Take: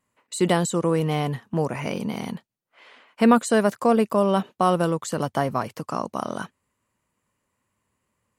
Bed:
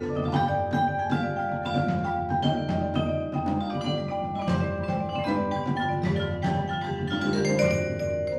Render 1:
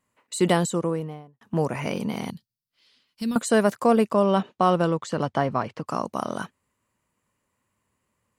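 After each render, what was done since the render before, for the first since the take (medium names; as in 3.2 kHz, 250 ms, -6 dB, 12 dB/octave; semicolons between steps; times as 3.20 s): 0.54–1.41 s: studio fade out; 2.30–3.36 s: FFT filter 120 Hz 0 dB, 270 Hz -12 dB, 700 Hz -27 dB, 2.2 kHz -18 dB, 4.9 kHz +4 dB, 7 kHz -7 dB, 13 kHz +1 dB; 4.08–5.85 s: low-pass 7.8 kHz -> 3.8 kHz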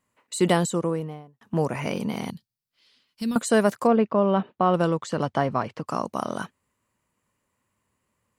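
3.87–4.74 s: distance through air 300 m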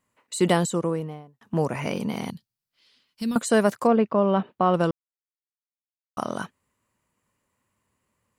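4.91–6.17 s: mute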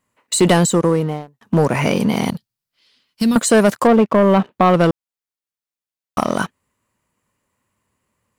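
waveshaping leveller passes 2; in parallel at +2.5 dB: compression, threshold -25 dBFS, peak gain reduction 12.5 dB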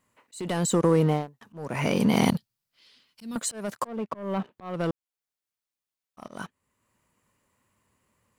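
compression 5:1, threshold -15 dBFS, peak gain reduction 6 dB; slow attack 692 ms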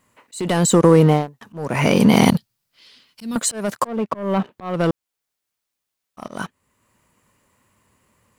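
trim +9 dB; peak limiter -2 dBFS, peak gain reduction 1.5 dB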